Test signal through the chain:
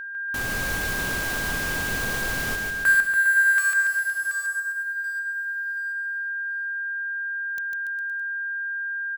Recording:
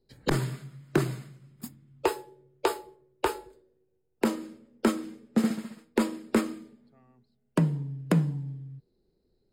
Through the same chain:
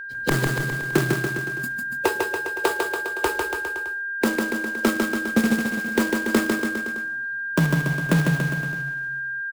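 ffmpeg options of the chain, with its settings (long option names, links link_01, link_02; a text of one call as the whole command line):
ffmpeg -i in.wav -filter_complex "[0:a]acrusher=bits=2:mode=log:mix=0:aa=0.000001,acontrast=35,aeval=exprs='val(0)+0.0316*sin(2*PI*1600*n/s)':channel_layout=same,asplit=2[link_01][link_02];[link_02]aecho=0:1:150|285|406.5|515.8|614.3:0.631|0.398|0.251|0.158|0.1[link_03];[link_01][link_03]amix=inputs=2:normalize=0,volume=-2dB" out.wav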